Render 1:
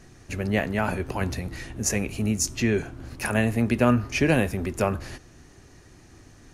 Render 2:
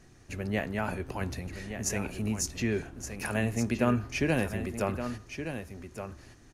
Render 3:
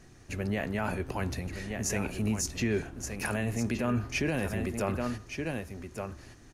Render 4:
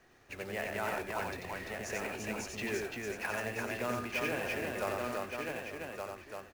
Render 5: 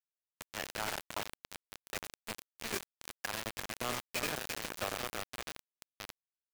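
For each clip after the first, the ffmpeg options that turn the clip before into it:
ffmpeg -i in.wav -af "aecho=1:1:1170:0.355,volume=-6.5dB" out.wav
ffmpeg -i in.wav -af "alimiter=limit=-22.5dB:level=0:latency=1:release=13,volume=2dB" out.wav
ffmpeg -i in.wav -filter_complex "[0:a]acrossover=split=390 3800:gain=0.178 1 0.2[link_01][link_02][link_03];[link_01][link_02][link_03]amix=inputs=3:normalize=0,acrusher=bits=3:mode=log:mix=0:aa=0.000001,aecho=1:1:90|342|884:0.668|0.708|0.168,volume=-2.5dB" out.wav
ffmpeg -i in.wav -af "acrusher=bits=4:mix=0:aa=0.000001,volume=-2.5dB" out.wav

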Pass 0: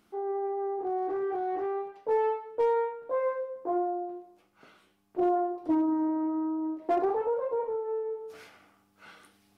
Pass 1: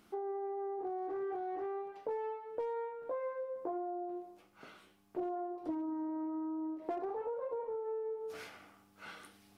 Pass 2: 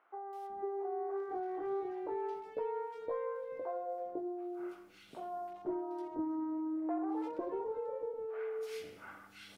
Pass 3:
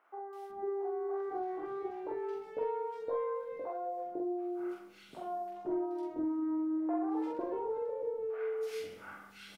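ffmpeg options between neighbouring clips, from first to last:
ffmpeg -i in.wav -af "acompressor=threshold=-39dB:ratio=6,volume=2dB" out.wav
ffmpeg -i in.wav -filter_complex "[0:a]acrossover=split=550|1900[link_01][link_02][link_03];[link_03]adelay=330[link_04];[link_01]adelay=500[link_05];[link_05][link_02][link_04]amix=inputs=3:normalize=0,volume=2.5dB" out.wav
ffmpeg -i in.wav -filter_complex "[0:a]asplit=2[link_01][link_02];[link_02]adelay=45,volume=-2.5dB[link_03];[link_01][link_03]amix=inputs=2:normalize=0" out.wav

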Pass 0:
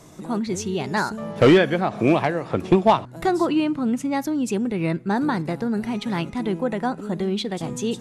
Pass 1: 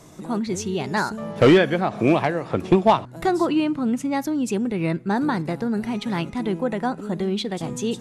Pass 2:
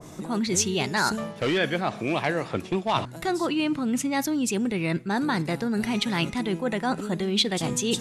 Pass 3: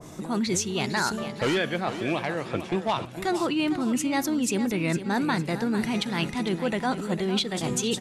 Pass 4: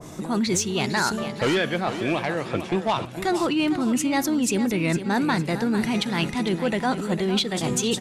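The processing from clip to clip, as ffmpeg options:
ffmpeg -i in.wav -af anull out.wav
ffmpeg -i in.wav -af "areverse,acompressor=threshold=-26dB:ratio=12,areverse,adynamicequalizer=threshold=0.00398:dfrequency=1600:dqfactor=0.7:tfrequency=1600:tqfactor=0.7:attack=5:release=100:ratio=0.375:range=4:mode=boostabove:tftype=highshelf,volume=3.5dB" out.wav
ffmpeg -i in.wav -af "alimiter=limit=-15.5dB:level=0:latency=1:release=312,aecho=1:1:455|910|1365|1820:0.282|0.093|0.0307|0.0101" out.wav
ffmpeg -i in.wav -af "asoftclip=type=tanh:threshold=-14.5dB,volume=3.5dB" out.wav

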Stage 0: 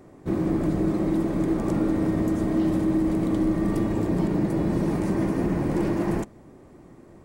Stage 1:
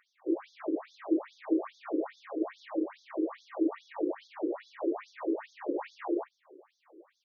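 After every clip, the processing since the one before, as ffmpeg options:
ffmpeg -i in.wav -filter_complex "[0:a]acrossover=split=3200[link_01][link_02];[link_02]acompressor=threshold=-56dB:ratio=4:attack=1:release=60[link_03];[link_01][link_03]amix=inputs=2:normalize=0,asplit=2[link_04][link_05];[link_05]adelay=46,volume=-12.5dB[link_06];[link_04][link_06]amix=inputs=2:normalize=0,afftfilt=real='re*between(b*sr/1024,370*pow(4800/370,0.5+0.5*sin(2*PI*2.4*pts/sr))/1.41,370*pow(4800/370,0.5+0.5*sin(2*PI*2.4*pts/sr))*1.41)':imag='im*between(b*sr/1024,370*pow(4800/370,0.5+0.5*sin(2*PI*2.4*pts/sr))/1.41,370*pow(4800/370,0.5+0.5*sin(2*PI*2.4*pts/sr))*1.41)':win_size=1024:overlap=0.75" out.wav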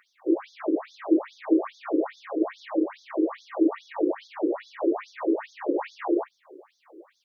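ffmpeg -i in.wav -af "highpass=110,volume=7dB" out.wav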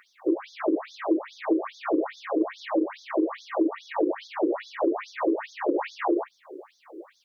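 ffmpeg -i in.wav -af "acompressor=threshold=-26dB:ratio=6,volume=5.5dB" out.wav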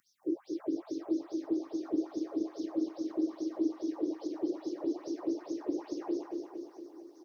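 ffmpeg -i in.wav -filter_complex "[0:a]firequalizer=gain_entry='entry(210,0);entry(460,-17);entry(2200,-29);entry(5400,-2)':delay=0.05:min_phase=1,asplit=2[link_01][link_02];[link_02]aecho=0:1:231|462|693|924|1155|1386|1617|1848:0.596|0.351|0.207|0.122|0.0722|0.0426|0.0251|0.0148[link_03];[link_01][link_03]amix=inputs=2:normalize=0" out.wav

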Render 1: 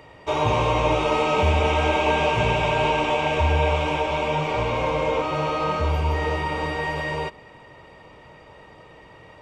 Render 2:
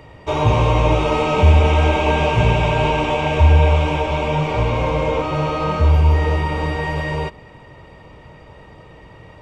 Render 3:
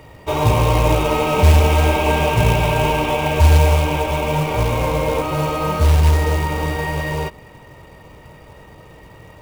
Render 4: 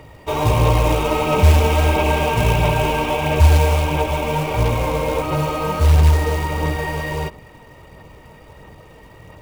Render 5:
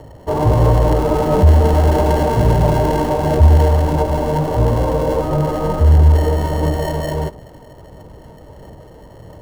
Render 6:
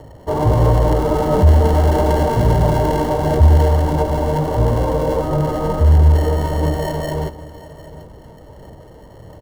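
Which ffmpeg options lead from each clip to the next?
ffmpeg -i in.wav -af "lowshelf=frequency=210:gain=10.5,volume=1.5dB" out.wav
ffmpeg -i in.wav -af "acrusher=bits=4:mode=log:mix=0:aa=0.000001" out.wav
ffmpeg -i in.wav -af "aphaser=in_gain=1:out_gain=1:delay=4.5:decay=0.28:speed=1.5:type=sinusoidal,volume=-1.5dB" out.wav
ffmpeg -i in.wav -filter_complex "[0:a]acrossover=split=820|980[link_01][link_02][link_03];[link_03]acrusher=samples=36:mix=1:aa=0.000001[link_04];[link_01][link_02][link_04]amix=inputs=3:normalize=0,acontrast=30,volume=-1dB" out.wav
ffmpeg -i in.wav -af "asuperstop=centerf=2500:order=20:qfactor=7.1,aecho=1:1:755:0.133,volume=-1dB" out.wav

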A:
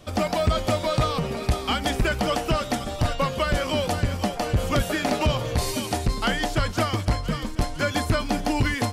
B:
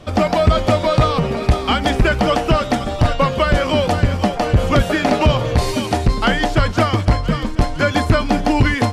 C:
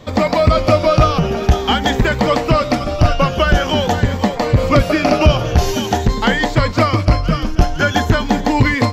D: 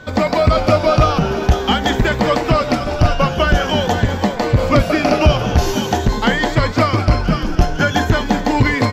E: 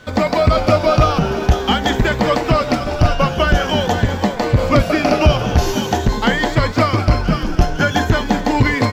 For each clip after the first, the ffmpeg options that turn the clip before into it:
ffmpeg -i in.wav -af "aemphasis=mode=reproduction:type=50kf,volume=8.5dB" out.wav
ffmpeg -i in.wav -af "afftfilt=real='re*pow(10,7/40*sin(2*PI*(1*log(max(b,1)*sr/1024/100)/log(2)-(0.47)*(pts-256)/sr)))':imag='im*pow(10,7/40*sin(2*PI*(1*log(max(b,1)*sr/1024/100)/log(2)-(0.47)*(pts-256)/sr)))':win_size=1024:overlap=0.75,aexciter=amount=1.1:drive=1.1:freq=5200,volume=1dB" out.wav
ffmpeg -i in.wav -filter_complex "[0:a]aeval=exprs='val(0)+0.0141*sin(2*PI*1500*n/s)':channel_layout=same,asplit=6[link_01][link_02][link_03][link_04][link_05][link_06];[link_02]adelay=196,afreqshift=130,volume=-13dB[link_07];[link_03]adelay=392,afreqshift=260,volume=-19.2dB[link_08];[link_04]adelay=588,afreqshift=390,volume=-25.4dB[link_09];[link_05]adelay=784,afreqshift=520,volume=-31.6dB[link_10];[link_06]adelay=980,afreqshift=650,volume=-37.8dB[link_11];[link_01][link_07][link_08][link_09][link_10][link_11]amix=inputs=6:normalize=0,volume=-1dB" out.wav
ffmpeg -i in.wav -af "aeval=exprs='sgn(val(0))*max(abs(val(0))-0.00708,0)':channel_layout=same" out.wav

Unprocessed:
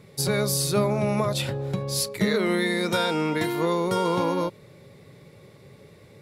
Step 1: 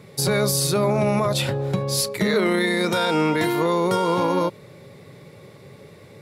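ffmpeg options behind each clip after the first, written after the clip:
ffmpeg -i in.wav -af "highpass=73,equalizer=frequency=940:width_type=o:width=2:gain=2,alimiter=limit=-16.5dB:level=0:latency=1:release=15,volume=4.5dB" out.wav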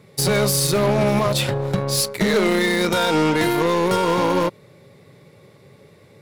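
ffmpeg -i in.wav -af "aeval=exprs='0.266*(cos(1*acos(clip(val(0)/0.266,-1,1)))-cos(1*PI/2))+0.0075*(cos(4*acos(clip(val(0)/0.266,-1,1)))-cos(4*PI/2))+0.0335*(cos(5*acos(clip(val(0)/0.266,-1,1)))-cos(5*PI/2))+0.0422*(cos(7*acos(clip(val(0)/0.266,-1,1)))-cos(7*PI/2))':channel_layout=same,volume=1.5dB" out.wav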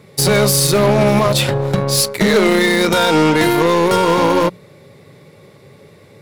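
ffmpeg -i in.wav -af "bandreject=frequency=60:width_type=h:width=6,bandreject=frequency=120:width_type=h:width=6,bandreject=frequency=180:width_type=h:width=6,volume=5.5dB" out.wav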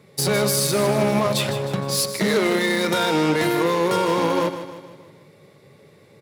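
ffmpeg -i in.wav -filter_complex "[0:a]highpass=100,asplit=2[link_01][link_02];[link_02]aecho=0:1:155|310|465|620|775:0.282|0.141|0.0705|0.0352|0.0176[link_03];[link_01][link_03]amix=inputs=2:normalize=0,volume=-7dB" out.wav

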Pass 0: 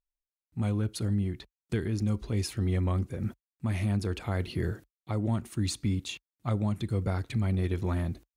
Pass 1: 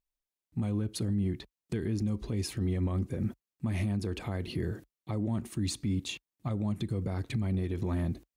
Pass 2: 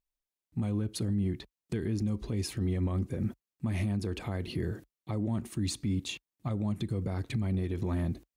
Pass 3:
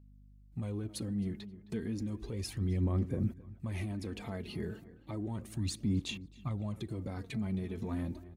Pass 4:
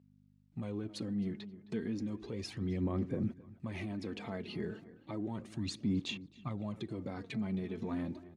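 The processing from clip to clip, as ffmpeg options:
ffmpeg -i in.wav -af "equalizer=frequency=250:width=0.66:gain=5,bandreject=frequency=1400:width=13,alimiter=limit=-23dB:level=0:latency=1:release=96" out.wav
ffmpeg -i in.wav -af anull out.wav
ffmpeg -i in.wav -filter_complex "[0:a]asplit=2[link_01][link_02];[link_02]adelay=265,lowpass=frequency=2600:poles=1,volume=-16dB,asplit=2[link_03][link_04];[link_04]adelay=265,lowpass=frequency=2600:poles=1,volume=0.44,asplit=2[link_05][link_06];[link_06]adelay=265,lowpass=frequency=2600:poles=1,volume=0.44,asplit=2[link_07][link_08];[link_08]adelay=265,lowpass=frequency=2600:poles=1,volume=0.44[link_09];[link_01][link_03][link_05][link_07][link_09]amix=inputs=5:normalize=0,aeval=exprs='val(0)+0.00158*(sin(2*PI*50*n/s)+sin(2*PI*2*50*n/s)/2+sin(2*PI*3*50*n/s)/3+sin(2*PI*4*50*n/s)/4+sin(2*PI*5*50*n/s)/5)':channel_layout=same,aphaser=in_gain=1:out_gain=1:delay=4.8:decay=0.47:speed=0.33:type=sinusoidal,volume=-5.5dB" out.wav
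ffmpeg -i in.wav -af "highpass=150,lowpass=5300,volume=1dB" out.wav

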